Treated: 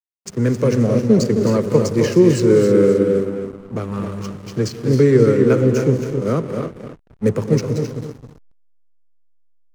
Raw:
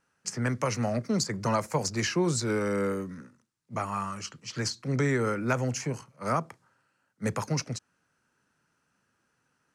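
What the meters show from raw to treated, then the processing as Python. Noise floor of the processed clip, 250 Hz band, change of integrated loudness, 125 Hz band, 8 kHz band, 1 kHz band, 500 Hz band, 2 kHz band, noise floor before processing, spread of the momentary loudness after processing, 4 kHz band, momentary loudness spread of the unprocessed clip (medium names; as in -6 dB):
-53 dBFS, +14.5 dB, +13.5 dB, +13.0 dB, +1.0 dB, +0.5 dB, +16.5 dB, +2.5 dB, -75 dBFS, 15 LU, +2.0 dB, 10 LU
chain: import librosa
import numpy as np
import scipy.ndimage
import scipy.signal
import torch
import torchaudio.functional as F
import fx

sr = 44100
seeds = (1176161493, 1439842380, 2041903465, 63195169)

p1 = fx.low_shelf_res(x, sr, hz=590.0, db=8.5, q=3.0)
p2 = p1 + fx.echo_feedback(p1, sr, ms=265, feedback_pct=31, wet_db=-7.0, dry=0)
p3 = fx.rev_gated(p2, sr, seeds[0], gate_ms=330, shape='rising', drr_db=6.5)
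p4 = fx.backlash(p3, sr, play_db=-30.5)
y = p4 * 10.0 ** (2.5 / 20.0)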